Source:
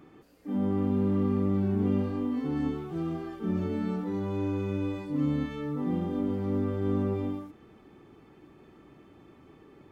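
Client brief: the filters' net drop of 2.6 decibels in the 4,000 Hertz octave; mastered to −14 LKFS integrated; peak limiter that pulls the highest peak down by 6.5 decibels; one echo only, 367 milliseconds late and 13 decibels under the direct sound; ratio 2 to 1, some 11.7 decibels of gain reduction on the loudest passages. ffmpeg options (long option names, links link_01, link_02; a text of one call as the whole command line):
ffmpeg -i in.wav -af "equalizer=frequency=4000:width_type=o:gain=-3.5,acompressor=threshold=-45dB:ratio=2,alimiter=level_in=10.5dB:limit=-24dB:level=0:latency=1,volume=-10.5dB,aecho=1:1:367:0.224,volume=29.5dB" out.wav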